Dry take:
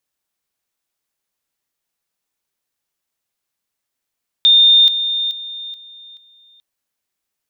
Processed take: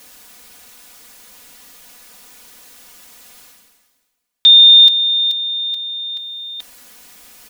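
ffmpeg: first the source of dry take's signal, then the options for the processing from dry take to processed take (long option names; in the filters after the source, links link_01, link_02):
-f lavfi -i "aevalsrc='pow(10,(-6.5-10*floor(t/0.43))/20)*sin(2*PI*3630*t)':duration=2.15:sample_rate=44100"
-af "aecho=1:1:4.1:0.83,areverse,acompressor=mode=upward:threshold=-16dB:ratio=2.5,areverse"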